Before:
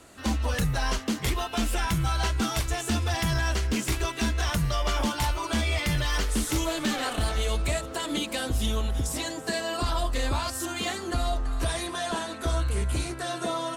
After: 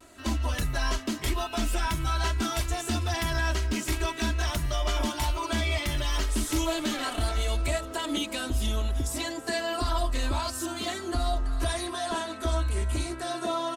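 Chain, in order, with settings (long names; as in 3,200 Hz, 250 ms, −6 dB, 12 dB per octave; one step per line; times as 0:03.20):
comb filter 3.1 ms, depth 59%
pitch vibrato 0.45 Hz 26 cents
level −3 dB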